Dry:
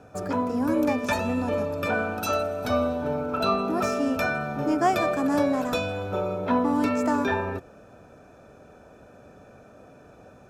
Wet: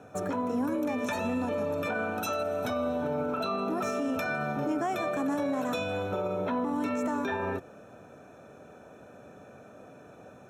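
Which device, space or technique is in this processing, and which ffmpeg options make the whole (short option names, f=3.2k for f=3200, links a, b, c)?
PA system with an anti-feedback notch: -af "highpass=110,asuperstop=centerf=4800:order=8:qfactor=5.5,alimiter=limit=-22.5dB:level=0:latency=1:release=68"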